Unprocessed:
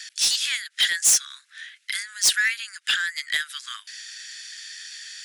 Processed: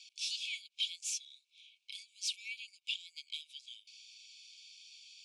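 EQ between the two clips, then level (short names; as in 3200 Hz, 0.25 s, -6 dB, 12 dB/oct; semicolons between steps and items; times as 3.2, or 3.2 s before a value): brick-wall FIR high-pass 2200 Hz; tape spacing loss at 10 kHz 20 dB; -7.0 dB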